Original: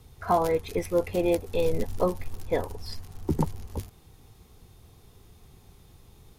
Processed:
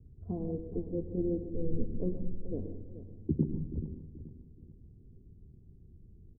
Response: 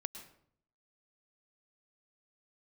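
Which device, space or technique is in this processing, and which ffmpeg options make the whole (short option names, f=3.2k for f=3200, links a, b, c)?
next room: -filter_complex "[0:a]asettb=1/sr,asplit=3[a][b][c];[a]atrim=end=2.534[d];[b]atrim=start=2.53:end=3.49,asetpts=PTS-STARTPTS,afade=t=in:d=0.004:c=qsin,afade=t=out:st=0.956:d=0.004:c=qsin,highpass=84[e];[c]atrim=start=3.486[f];[d][e]acrossfade=d=0.004:c1=hsin:c2=qsin[g];[g][f]acrossfade=d=0.004:c1=qsin:c2=hsin,lowpass=f=340:w=0.5412,lowpass=f=340:w=1.3066,aecho=1:1:430|860|1290|1720:0.224|0.0851|0.0323|0.0123[h];[1:a]atrim=start_sample=2205[i];[h][i]afir=irnorm=-1:irlink=0"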